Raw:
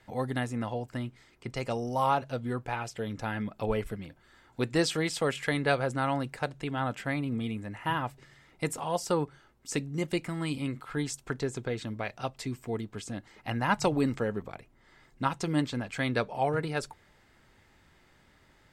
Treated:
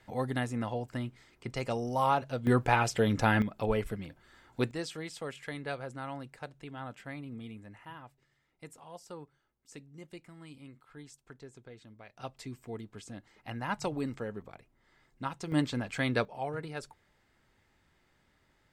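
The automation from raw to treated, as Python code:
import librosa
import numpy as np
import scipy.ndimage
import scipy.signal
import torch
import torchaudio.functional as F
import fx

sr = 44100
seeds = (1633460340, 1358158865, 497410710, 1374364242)

y = fx.gain(x, sr, db=fx.steps((0.0, -1.0), (2.47, 8.0), (3.42, 0.0), (4.71, -11.0), (7.85, -17.5), (12.17, -7.5), (15.52, -0.5), (16.25, -8.0)))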